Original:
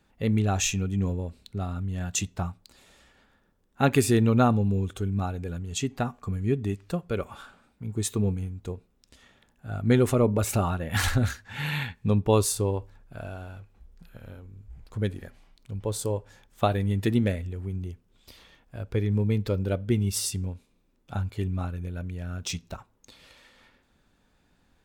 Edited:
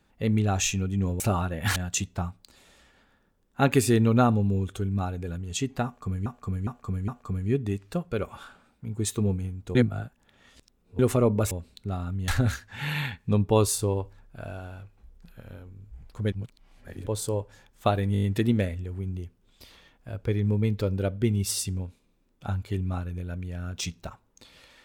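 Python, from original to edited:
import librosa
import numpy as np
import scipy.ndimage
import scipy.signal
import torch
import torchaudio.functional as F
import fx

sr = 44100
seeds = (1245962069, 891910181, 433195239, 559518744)

y = fx.edit(x, sr, fx.swap(start_s=1.2, length_s=0.77, other_s=10.49, other_length_s=0.56),
    fx.repeat(start_s=6.06, length_s=0.41, count=4),
    fx.reverse_span(start_s=8.73, length_s=1.24),
    fx.reverse_span(start_s=15.09, length_s=0.74),
    fx.stutter(start_s=16.9, slice_s=0.02, count=6), tone=tone)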